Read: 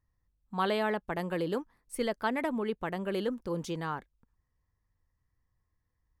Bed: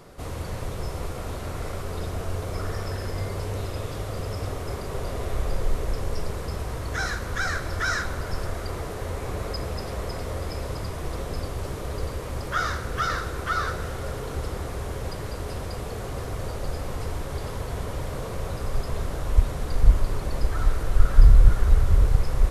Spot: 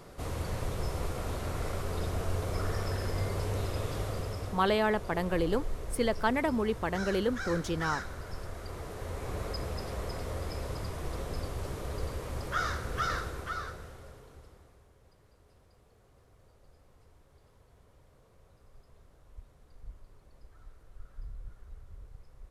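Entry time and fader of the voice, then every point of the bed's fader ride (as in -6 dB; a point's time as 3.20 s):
4.00 s, +2.5 dB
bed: 4.05 s -2.5 dB
4.73 s -11 dB
8.50 s -11 dB
9.37 s -5.5 dB
13.18 s -5.5 dB
14.92 s -30.5 dB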